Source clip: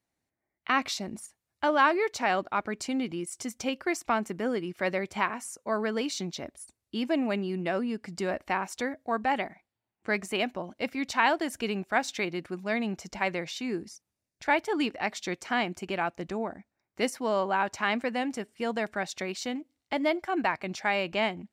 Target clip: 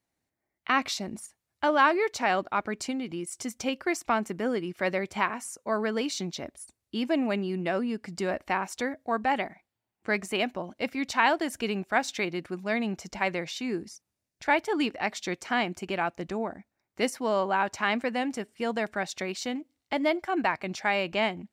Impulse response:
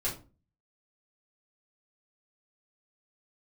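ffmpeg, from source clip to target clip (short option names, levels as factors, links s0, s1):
-filter_complex "[0:a]asettb=1/sr,asplit=3[s0][s1][s2];[s0]atrim=end=2.904[s3];[s1]atrim=start=2.9:end=3.3,asetpts=PTS-STARTPTS,afade=t=in:d=0.004:c=qsin,afade=t=out:st=0.396:d=0.004:c=qsin,acompressor=threshold=0.0316:ratio=6[s4];[s2]atrim=start=3.296[s5];[s3][s4]acrossfade=d=0.004:c1=hsin:c2=qsin[s6];[s6][s5]acrossfade=d=0.004:c1=qsin:c2=hsin,volume=1.12"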